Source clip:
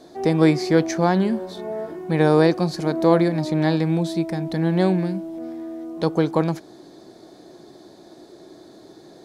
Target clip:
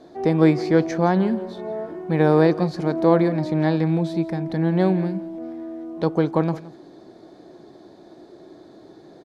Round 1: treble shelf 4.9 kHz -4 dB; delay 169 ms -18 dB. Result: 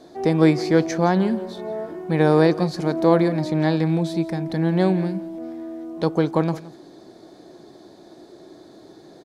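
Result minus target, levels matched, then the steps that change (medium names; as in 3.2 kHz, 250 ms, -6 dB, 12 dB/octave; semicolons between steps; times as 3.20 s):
8 kHz band +7.0 dB
change: treble shelf 4.9 kHz -15 dB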